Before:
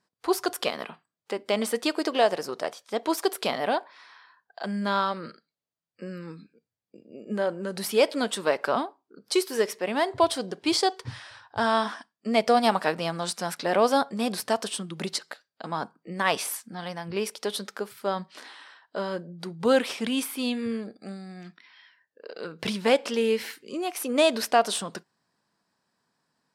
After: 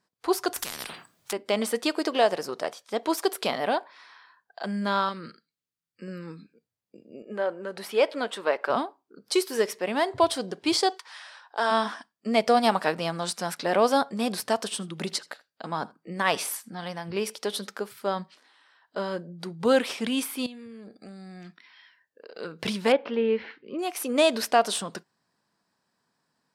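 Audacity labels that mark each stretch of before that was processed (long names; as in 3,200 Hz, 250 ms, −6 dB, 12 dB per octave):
0.560000	1.330000	every bin compressed towards the loudest bin 10 to 1
5.090000	6.080000	parametric band 690 Hz −12.5 dB 0.95 octaves
7.220000	8.700000	bass and treble bass −14 dB, treble −11 dB
10.970000	11.700000	high-pass filter 910 Hz → 280 Hz 24 dB per octave
14.640000	17.740000	single-tap delay 80 ms −22.5 dB
18.340000	18.960000	downward compressor 16 to 1, threshold −56 dBFS
20.460000	22.370000	downward compressor 8 to 1, threshold −40 dBFS
22.920000	23.790000	Gaussian smoothing sigma 3 samples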